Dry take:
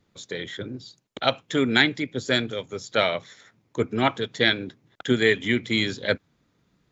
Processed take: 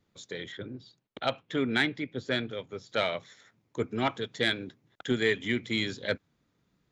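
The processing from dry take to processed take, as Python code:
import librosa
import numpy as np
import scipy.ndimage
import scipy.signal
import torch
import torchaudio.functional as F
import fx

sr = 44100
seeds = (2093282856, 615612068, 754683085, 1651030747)

y = fx.lowpass(x, sr, hz=3800.0, slope=12, at=(0.52, 2.89))
y = 10.0 ** (-6.5 / 20.0) * np.tanh(y / 10.0 ** (-6.5 / 20.0))
y = F.gain(torch.from_numpy(y), -6.0).numpy()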